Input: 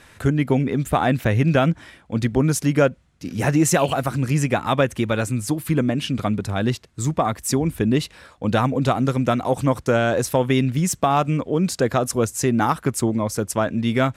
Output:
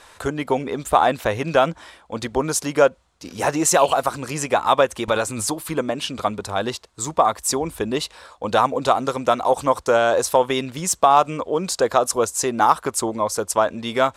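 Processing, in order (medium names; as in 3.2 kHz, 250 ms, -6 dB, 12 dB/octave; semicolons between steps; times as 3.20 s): graphic EQ 125/250/500/1000/2000/4000/8000 Hz -12/-5/+4/+9/-3/+5/+5 dB; 5.08–5.65 s: swell ahead of each attack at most 37 dB/s; trim -1.5 dB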